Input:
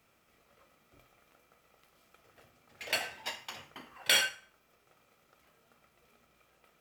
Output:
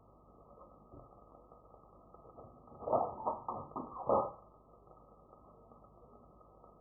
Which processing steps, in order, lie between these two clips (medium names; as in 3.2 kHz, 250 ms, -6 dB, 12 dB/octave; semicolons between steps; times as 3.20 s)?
brick-wall FIR low-pass 1.3 kHz; hum 50 Hz, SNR 26 dB; trim +9 dB